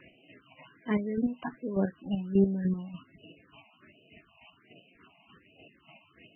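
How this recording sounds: chopped level 3.4 Hz, depth 60%, duty 30%; phasing stages 6, 1.3 Hz, lowest notch 400–1500 Hz; MP3

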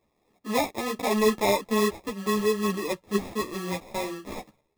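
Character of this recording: aliases and images of a low sample rate 1500 Hz, jitter 0%; a shimmering, thickened sound

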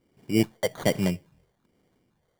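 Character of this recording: a quantiser's noise floor 12-bit, dither none; phasing stages 6, 1.2 Hz, lowest notch 250–3900 Hz; aliases and images of a low sample rate 2600 Hz, jitter 0%

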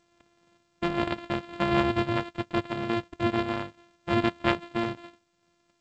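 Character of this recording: a buzz of ramps at a fixed pitch in blocks of 128 samples; random-step tremolo; G.722

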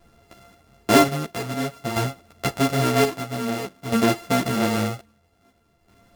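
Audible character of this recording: a buzz of ramps at a fixed pitch in blocks of 64 samples; chopped level 0.51 Hz, depth 60%, duty 55%; a shimmering, thickened sound

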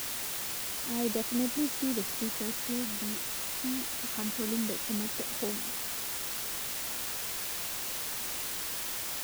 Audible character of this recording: phasing stages 2, 0.22 Hz, lowest notch 480–1100 Hz; a quantiser's noise floor 6-bit, dither triangular

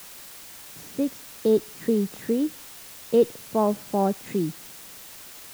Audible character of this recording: a quantiser's noise floor 8-bit, dither triangular

